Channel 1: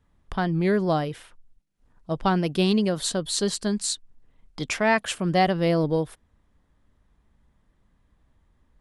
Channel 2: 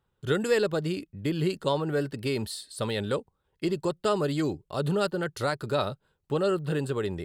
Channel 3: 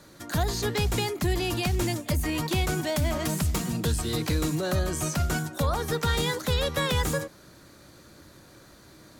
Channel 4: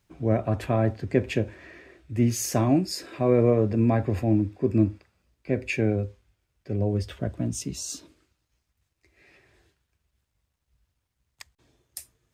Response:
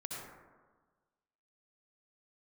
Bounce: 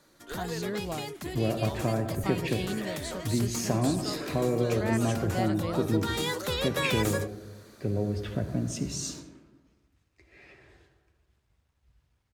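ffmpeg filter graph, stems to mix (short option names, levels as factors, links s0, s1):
-filter_complex "[0:a]volume=0.224[s0];[1:a]highpass=420,volume=0.224[s1];[2:a]lowshelf=f=130:g=-12,volume=0.794,afade=t=in:st=5.94:d=0.3:silence=0.446684[s2];[3:a]lowpass=f=4000:p=1,acompressor=threshold=0.0251:ratio=3,adelay=1150,volume=1.19,asplit=2[s3][s4];[s4]volume=0.668[s5];[4:a]atrim=start_sample=2205[s6];[s5][s6]afir=irnorm=-1:irlink=0[s7];[s0][s1][s2][s3][s7]amix=inputs=5:normalize=0"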